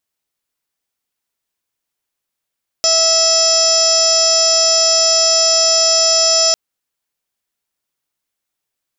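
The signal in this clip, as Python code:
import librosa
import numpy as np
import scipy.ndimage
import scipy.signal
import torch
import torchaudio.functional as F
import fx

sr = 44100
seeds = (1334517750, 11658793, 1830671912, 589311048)

y = fx.additive_steady(sr, length_s=3.7, hz=653.0, level_db=-17.5, upper_db=(-8.5, -17, -13.0, -10.5, -12.5, -7.5, 5, -0.5, -14, -2.5))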